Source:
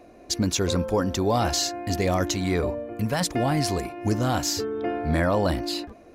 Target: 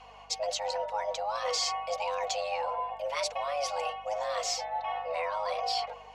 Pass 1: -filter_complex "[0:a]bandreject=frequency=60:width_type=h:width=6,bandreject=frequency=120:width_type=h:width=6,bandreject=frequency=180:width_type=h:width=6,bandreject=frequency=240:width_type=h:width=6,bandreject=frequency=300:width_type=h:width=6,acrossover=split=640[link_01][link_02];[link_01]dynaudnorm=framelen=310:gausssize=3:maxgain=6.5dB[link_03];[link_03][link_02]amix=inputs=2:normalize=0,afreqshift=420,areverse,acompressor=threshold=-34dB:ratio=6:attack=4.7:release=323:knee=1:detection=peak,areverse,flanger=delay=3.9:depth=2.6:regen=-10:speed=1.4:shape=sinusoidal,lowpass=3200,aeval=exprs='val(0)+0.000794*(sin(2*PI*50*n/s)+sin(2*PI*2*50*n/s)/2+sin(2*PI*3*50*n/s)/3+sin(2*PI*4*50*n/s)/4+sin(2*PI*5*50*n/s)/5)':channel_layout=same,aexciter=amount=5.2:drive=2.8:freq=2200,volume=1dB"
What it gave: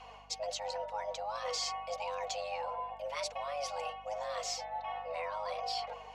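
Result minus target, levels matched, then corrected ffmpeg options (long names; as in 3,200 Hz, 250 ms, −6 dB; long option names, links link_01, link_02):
downward compressor: peak gain reduction +6 dB
-filter_complex "[0:a]bandreject=frequency=60:width_type=h:width=6,bandreject=frequency=120:width_type=h:width=6,bandreject=frequency=180:width_type=h:width=6,bandreject=frequency=240:width_type=h:width=6,bandreject=frequency=300:width_type=h:width=6,acrossover=split=640[link_01][link_02];[link_01]dynaudnorm=framelen=310:gausssize=3:maxgain=6.5dB[link_03];[link_03][link_02]amix=inputs=2:normalize=0,afreqshift=420,areverse,acompressor=threshold=-27dB:ratio=6:attack=4.7:release=323:knee=1:detection=peak,areverse,flanger=delay=3.9:depth=2.6:regen=-10:speed=1.4:shape=sinusoidal,lowpass=3200,aeval=exprs='val(0)+0.000794*(sin(2*PI*50*n/s)+sin(2*PI*2*50*n/s)/2+sin(2*PI*3*50*n/s)/3+sin(2*PI*4*50*n/s)/4+sin(2*PI*5*50*n/s)/5)':channel_layout=same,aexciter=amount=5.2:drive=2.8:freq=2200,volume=1dB"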